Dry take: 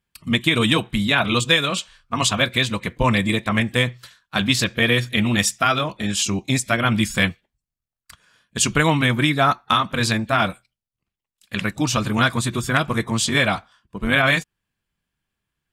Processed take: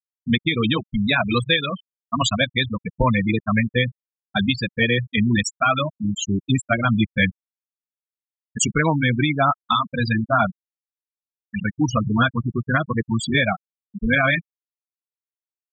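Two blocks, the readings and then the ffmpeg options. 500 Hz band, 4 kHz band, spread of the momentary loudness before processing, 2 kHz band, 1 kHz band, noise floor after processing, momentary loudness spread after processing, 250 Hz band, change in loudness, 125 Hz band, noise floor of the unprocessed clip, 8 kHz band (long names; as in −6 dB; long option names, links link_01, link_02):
−1.0 dB, −4.0 dB, 7 LU, −1.5 dB, −1.0 dB, below −85 dBFS, 7 LU, +0.5 dB, −1.5 dB, 0.0 dB, below −85 dBFS, −5.5 dB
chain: -af "afftfilt=real='re*gte(hypot(re,im),0.251)':imag='im*gte(hypot(re,im),0.251)':win_size=1024:overlap=0.75,alimiter=limit=-9dB:level=0:latency=1:release=448,volume=2dB"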